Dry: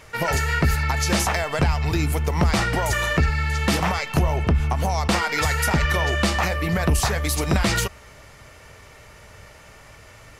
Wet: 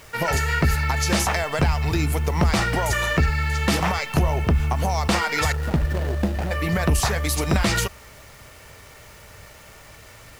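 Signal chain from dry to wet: 5.52–6.51 s: median filter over 41 samples; bit crusher 8-bit

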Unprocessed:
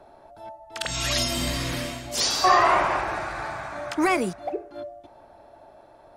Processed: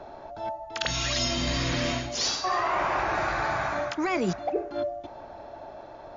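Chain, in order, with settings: reverse; compression 12:1, threshold -31 dBFS, peak gain reduction 18 dB; reverse; brick-wall FIR low-pass 7.2 kHz; trim +7.5 dB

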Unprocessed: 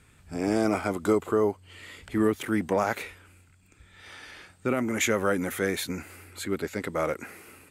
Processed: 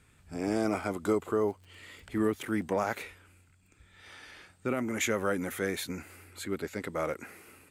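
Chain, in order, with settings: 1.30–3.04 s: crackle 39 per s -42 dBFS; trim -4.5 dB

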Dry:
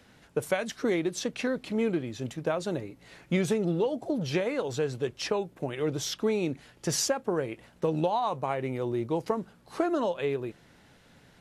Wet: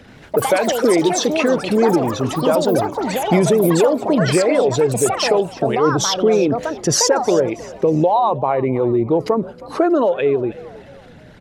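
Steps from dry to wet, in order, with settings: resonances exaggerated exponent 1.5; in parallel at +1.5 dB: peak limiter -24.5 dBFS, peak gain reduction 9 dB; on the sum: frequency-shifting echo 318 ms, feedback 39%, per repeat +66 Hz, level -19 dB; ever faster or slower copies 80 ms, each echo +6 st, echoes 3, each echo -6 dB; trim +7.5 dB

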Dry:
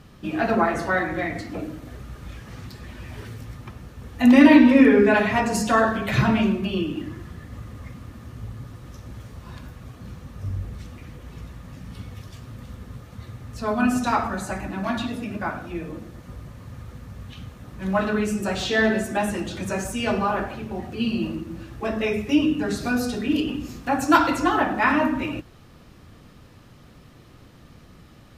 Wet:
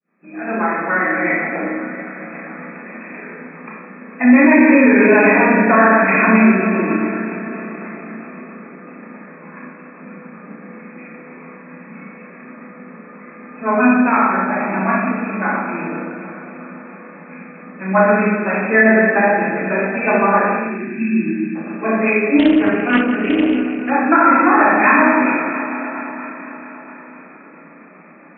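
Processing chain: fade-in on the opening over 1.34 s; echo whose repeats swap between lows and highs 114 ms, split 930 Hz, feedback 86%, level -10 dB; 20.63–21.55 s: time-frequency box 390–1500 Hz -23 dB; tilt EQ +2.5 dB/octave; FFT band-pass 160–2600 Hz; rotary cabinet horn 7.5 Hz; Schroeder reverb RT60 0.78 s, combs from 28 ms, DRR -3 dB; loudness maximiser +9 dB; 22.39–23.90 s: loudspeaker Doppler distortion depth 0.26 ms; trim -1 dB

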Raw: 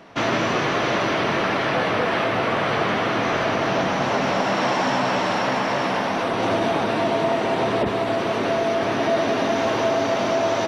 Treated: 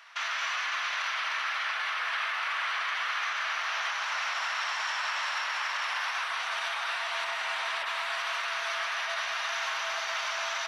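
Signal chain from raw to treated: high-pass 1.2 kHz 24 dB/octave; peak limiter -23.5 dBFS, peak gain reduction 8 dB; on a send: tape echo 132 ms, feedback 84%, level -9 dB, low-pass 3.2 kHz

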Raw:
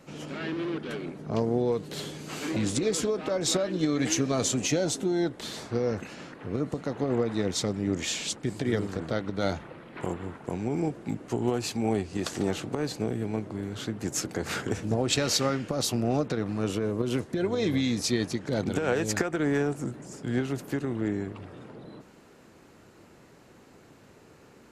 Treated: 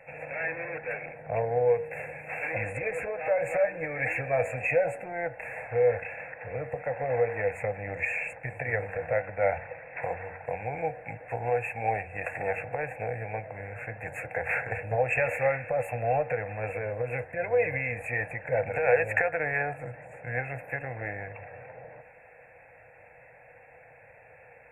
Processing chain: in parallel at -9.5 dB: hard clipper -24 dBFS, distortion -12 dB; on the sum: FFT filter 130 Hz 0 dB, 220 Hz -20 dB, 350 Hz -29 dB, 490 Hz -3 dB, 770 Hz +10 dB, 1.2 kHz -8 dB, 1.7 kHz +13 dB, 2.8 kHz +12 dB, 6.2 kHz -26 dB, 8.9 kHz -12 dB; FFT band-reject 2.7–6.5 kHz; de-hum 93.91 Hz, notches 18; small resonant body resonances 330/480 Hz, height 14 dB, ringing for 40 ms; trim -6 dB

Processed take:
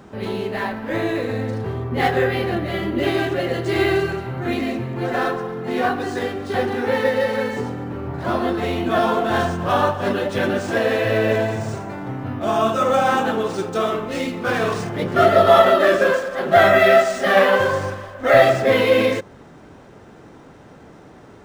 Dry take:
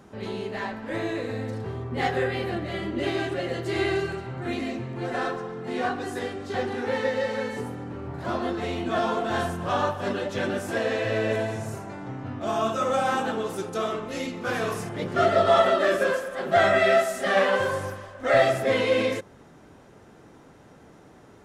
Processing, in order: decimation joined by straight lines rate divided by 3×; trim +7 dB

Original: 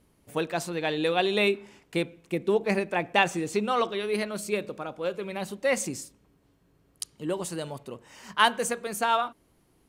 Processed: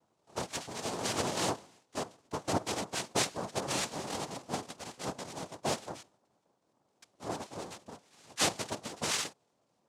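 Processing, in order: pitch shift switched off and on +10.5 st, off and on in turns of 140 ms; level-controlled noise filter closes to 2.1 kHz, open at -25 dBFS; noise-vocoded speech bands 2; trim -8 dB

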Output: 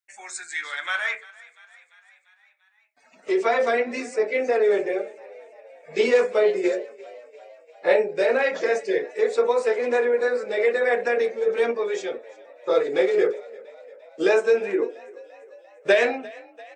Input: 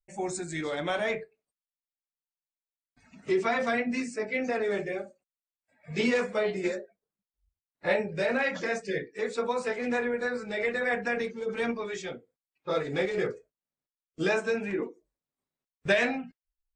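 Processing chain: high-pass sweep 1.6 kHz -> 420 Hz, 0.78–3.69 s; frequency-shifting echo 345 ms, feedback 63%, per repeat +39 Hz, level -21.5 dB; trim +3 dB

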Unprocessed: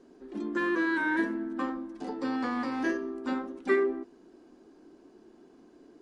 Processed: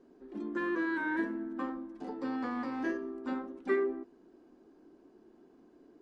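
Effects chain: treble shelf 3 kHz -8.5 dB; trim -4 dB

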